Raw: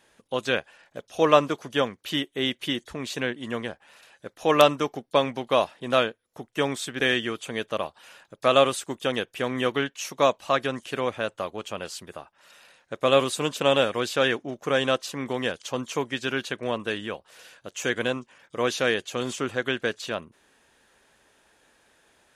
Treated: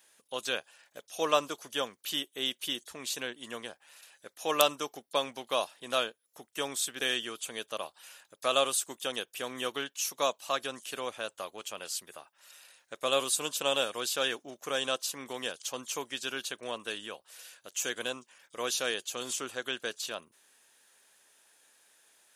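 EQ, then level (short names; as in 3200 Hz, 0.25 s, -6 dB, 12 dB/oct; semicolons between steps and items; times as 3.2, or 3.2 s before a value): RIAA curve recording; dynamic EQ 2000 Hz, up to -7 dB, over -42 dBFS, Q 2.8; -7.5 dB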